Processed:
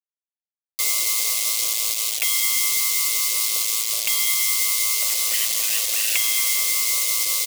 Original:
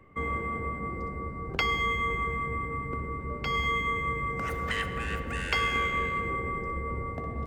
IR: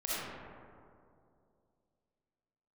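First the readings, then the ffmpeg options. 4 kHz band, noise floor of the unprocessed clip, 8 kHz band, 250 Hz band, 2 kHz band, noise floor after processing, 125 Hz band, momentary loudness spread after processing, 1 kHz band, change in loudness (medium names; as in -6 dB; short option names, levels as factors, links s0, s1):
+15.5 dB, -38 dBFS, +34.0 dB, under -15 dB, +2.5 dB, under -85 dBFS, under -30 dB, 3 LU, -9.5 dB, +12.0 dB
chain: -filter_complex "[0:a]highpass=f=620:t=q:w=6.3,acrossover=split=5800[s0][s1];[s0]adelay=630[s2];[s2][s1]amix=inputs=2:normalize=0,acompressor=threshold=0.0316:ratio=12,tremolo=f=110:d=0.857,acrossover=split=2900[s3][s4];[s4]acompressor=threshold=0.00126:ratio=4:attack=1:release=60[s5];[s3][s5]amix=inputs=2:normalize=0,highshelf=f=4400:g=3.5,aecho=1:1:5.8:0.37,acrusher=bits=6:mix=0:aa=0.000001,aexciter=amount=7.6:drive=5.8:freq=2300,highshelf=f=2200:g=11.5,volume=0.531"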